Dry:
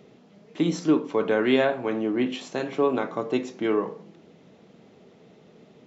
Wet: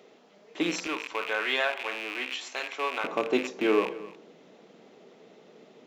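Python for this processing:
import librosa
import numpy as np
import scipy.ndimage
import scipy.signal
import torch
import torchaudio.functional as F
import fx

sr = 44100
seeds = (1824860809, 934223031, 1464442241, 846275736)

y = fx.rattle_buzz(x, sr, strikes_db=-39.0, level_db=-24.0)
y = fx.highpass(y, sr, hz=fx.steps((0.0, 430.0), (0.87, 1000.0), (3.04, 290.0)), slope=12)
y = y + 10.0 ** (-18.5 / 20.0) * np.pad(y, (int(263 * sr / 1000.0), 0))[:len(y)]
y = y * 10.0 ** (1.5 / 20.0)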